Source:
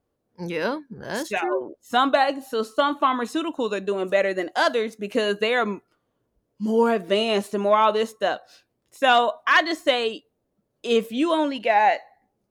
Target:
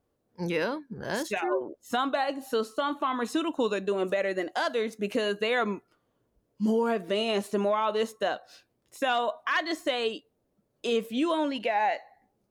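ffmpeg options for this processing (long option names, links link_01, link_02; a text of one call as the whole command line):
ffmpeg -i in.wav -af "alimiter=limit=-18dB:level=0:latency=1:release=323" out.wav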